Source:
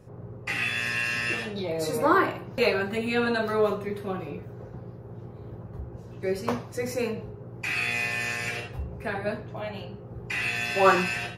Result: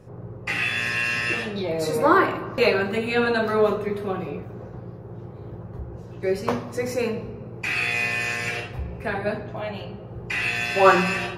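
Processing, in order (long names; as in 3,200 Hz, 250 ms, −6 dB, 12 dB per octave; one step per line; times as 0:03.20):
high-shelf EQ 6,800 Hz −5 dB
hum removal 46.9 Hz, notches 6
on a send: convolution reverb RT60 2.1 s, pre-delay 4 ms, DRR 14 dB
on the sum: level +4 dB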